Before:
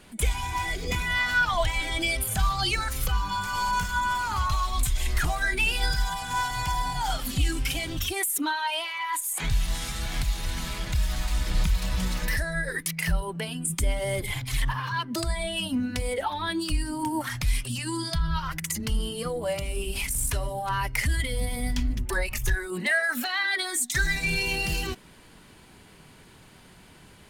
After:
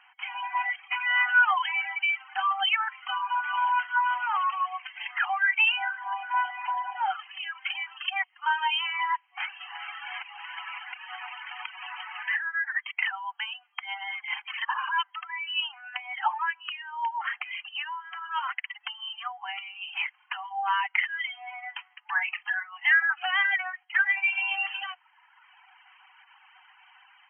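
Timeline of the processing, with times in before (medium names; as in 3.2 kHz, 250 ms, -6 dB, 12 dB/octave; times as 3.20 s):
5.91–7.86 s: distance through air 200 m
22.12–22.69 s: doubling 47 ms -12 dB
whole clip: FFT band-pass 730–3200 Hz; reverb removal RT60 1.2 s; level rider gain up to 4 dB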